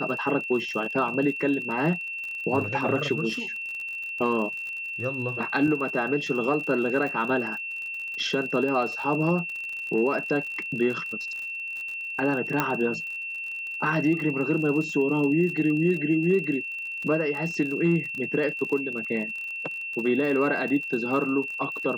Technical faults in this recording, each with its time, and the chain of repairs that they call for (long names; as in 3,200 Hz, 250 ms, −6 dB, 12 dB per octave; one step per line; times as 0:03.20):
surface crackle 47 per second −33 dBFS
whistle 2,700 Hz −31 dBFS
0:12.60: click −9 dBFS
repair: click removal
notch filter 2,700 Hz, Q 30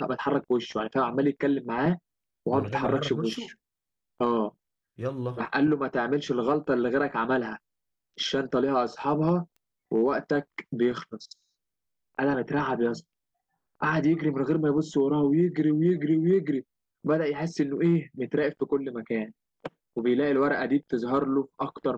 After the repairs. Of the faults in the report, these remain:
none of them is left